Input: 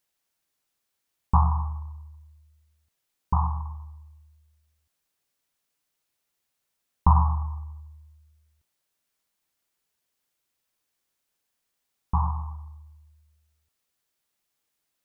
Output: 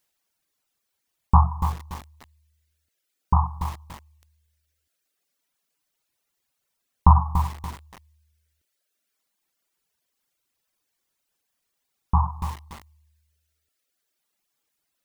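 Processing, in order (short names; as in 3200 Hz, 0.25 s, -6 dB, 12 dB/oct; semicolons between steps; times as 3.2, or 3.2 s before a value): reverb removal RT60 1.5 s; lo-fi delay 0.287 s, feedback 35%, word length 6-bit, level -9 dB; gain +4.5 dB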